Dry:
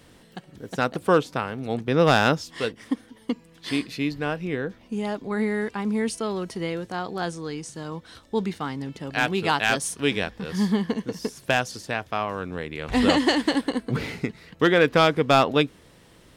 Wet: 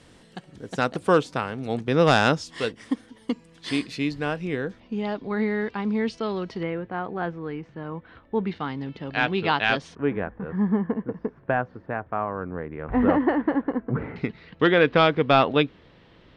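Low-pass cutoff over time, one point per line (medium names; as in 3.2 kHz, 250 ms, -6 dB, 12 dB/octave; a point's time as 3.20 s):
low-pass 24 dB/octave
9.8 kHz
from 4.80 s 4.6 kHz
from 6.63 s 2.4 kHz
from 8.47 s 4 kHz
from 9.95 s 1.6 kHz
from 14.16 s 4 kHz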